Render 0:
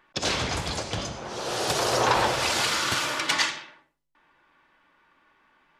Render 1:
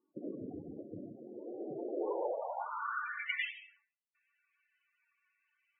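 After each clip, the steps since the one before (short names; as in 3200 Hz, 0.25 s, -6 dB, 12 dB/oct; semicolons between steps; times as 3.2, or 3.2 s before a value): band-pass sweep 300 Hz -> 2600 Hz, 1.9–3.46; loudest bins only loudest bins 16; gain -4 dB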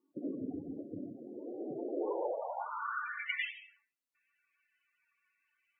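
bell 270 Hz +8.5 dB 0.27 oct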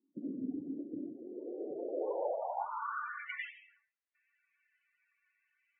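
band-pass sweep 210 Hz -> 1900 Hz, 0.26–4.13; gain +3.5 dB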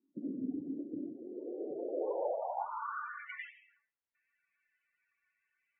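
LPF 1500 Hz 6 dB/oct; gain +1 dB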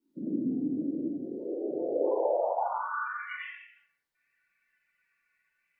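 reverb, pre-delay 5 ms, DRR -5.5 dB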